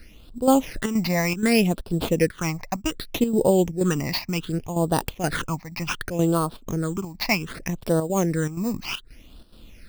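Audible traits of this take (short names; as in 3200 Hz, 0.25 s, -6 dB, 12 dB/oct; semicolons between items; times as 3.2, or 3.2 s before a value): aliases and images of a low sample rate 7700 Hz, jitter 0%; chopped level 2.1 Hz, depth 60%, duty 80%; phasing stages 8, 0.66 Hz, lowest notch 420–2100 Hz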